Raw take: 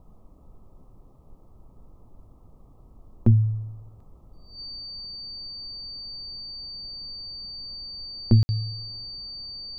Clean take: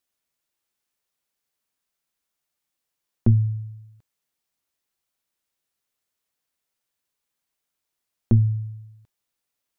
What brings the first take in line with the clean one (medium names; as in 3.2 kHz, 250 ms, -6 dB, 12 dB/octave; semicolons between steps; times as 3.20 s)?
band-stop 4.6 kHz, Q 30; room tone fill 8.43–8.49 s; noise print and reduce 30 dB